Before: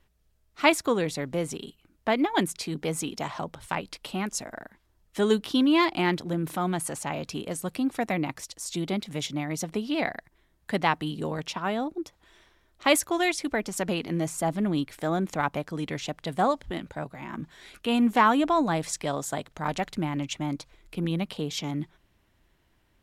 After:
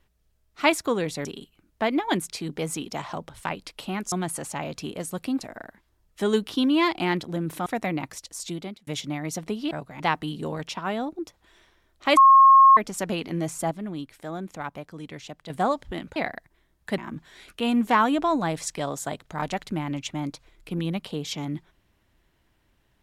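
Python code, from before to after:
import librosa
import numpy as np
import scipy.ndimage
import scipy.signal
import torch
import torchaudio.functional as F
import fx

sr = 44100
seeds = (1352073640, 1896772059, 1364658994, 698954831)

y = fx.edit(x, sr, fx.cut(start_s=1.25, length_s=0.26),
    fx.move(start_s=6.63, length_s=1.29, to_s=4.38),
    fx.fade_out_span(start_s=8.68, length_s=0.45),
    fx.swap(start_s=9.97, length_s=0.82, other_s=16.95, other_length_s=0.29),
    fx.bleep(start_s=12.96, length_s=0.6, hz=1080.0, db=-9.5),
    fx.clip_gain(start_s=14.5, length_s=1.79, db=-7.0), tone=tone)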